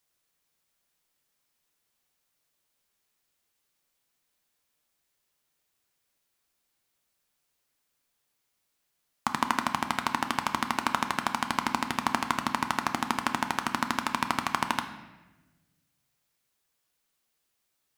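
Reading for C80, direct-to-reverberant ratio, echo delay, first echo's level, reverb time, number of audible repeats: 11.5 dB, 6.5 dB, none, none, 1.2 s, none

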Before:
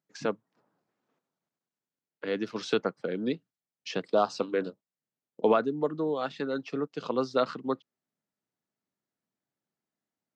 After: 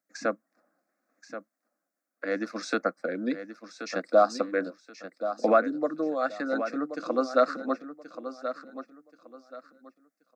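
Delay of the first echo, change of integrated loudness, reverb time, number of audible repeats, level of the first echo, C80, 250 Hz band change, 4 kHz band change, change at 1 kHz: 1.079 s, +2.0 dB, none, 3, -11.0 dB, none, +1.5 dB, -3.0 dB, +4.0 dB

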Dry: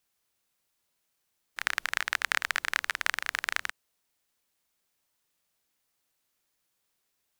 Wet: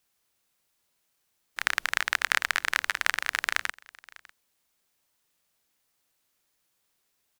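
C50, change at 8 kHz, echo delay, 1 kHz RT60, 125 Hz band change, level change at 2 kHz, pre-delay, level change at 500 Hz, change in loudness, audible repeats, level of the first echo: none, +3.0 dB, 0.599 s, none, n/a, +3.0 dB, none, +3.0 dB, +3.0 dB, 1, -22.5 dB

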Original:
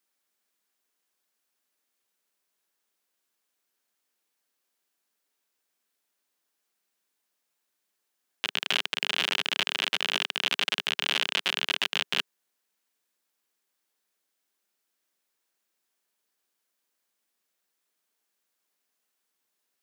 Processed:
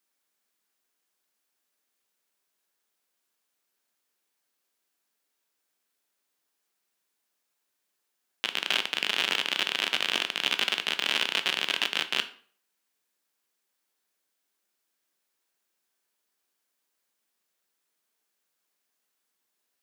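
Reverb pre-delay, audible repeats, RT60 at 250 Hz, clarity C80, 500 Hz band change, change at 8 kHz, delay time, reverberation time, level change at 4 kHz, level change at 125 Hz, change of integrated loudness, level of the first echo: 11 ms, none, 0.45 s, 19.0 dB, +0.5 dB, +0.5 dB, none, 0.50 s, +0.5 dB, n/a, +0.5 dB, none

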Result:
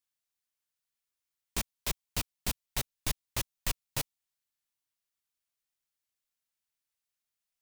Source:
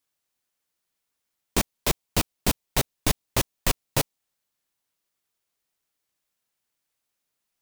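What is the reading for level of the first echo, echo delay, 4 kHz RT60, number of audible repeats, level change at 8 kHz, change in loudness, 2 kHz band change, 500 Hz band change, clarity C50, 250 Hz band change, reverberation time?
none, none, none, none, -7.5 dB, -9.0 dB, -9.0 dB, -15.0 dB, none, -14.5 dB, none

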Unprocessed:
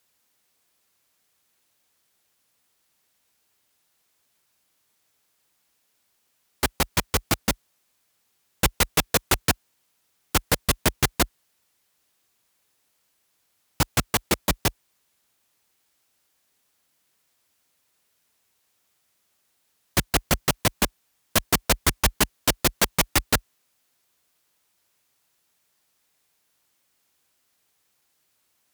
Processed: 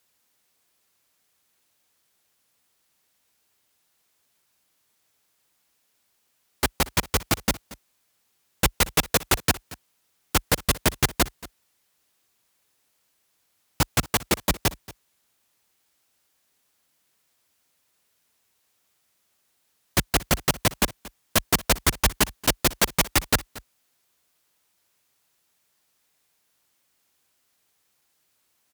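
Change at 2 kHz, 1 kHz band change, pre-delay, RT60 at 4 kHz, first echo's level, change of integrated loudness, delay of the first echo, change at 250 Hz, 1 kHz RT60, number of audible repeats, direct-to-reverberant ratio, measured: 0.0 dB, 0.0 dB, none, none, -19.5 dB, 0.0 dB, 0.23 s, 0.0 dB, none, 1, none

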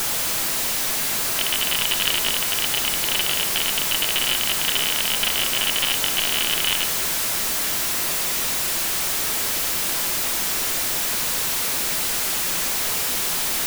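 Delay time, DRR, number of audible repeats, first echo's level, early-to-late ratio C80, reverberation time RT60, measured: none, 8.5 dB, none, none, 13.0 dB, 1.4 s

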